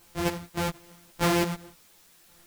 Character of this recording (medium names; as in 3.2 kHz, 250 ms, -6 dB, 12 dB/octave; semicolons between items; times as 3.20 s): a buzz of ramps at a fixed pitch in blocks of 256 samples; random-step tremolo, depth 80%; a quantiser's noise floor 10-bit, dither triangular; a shimmering, thickened sound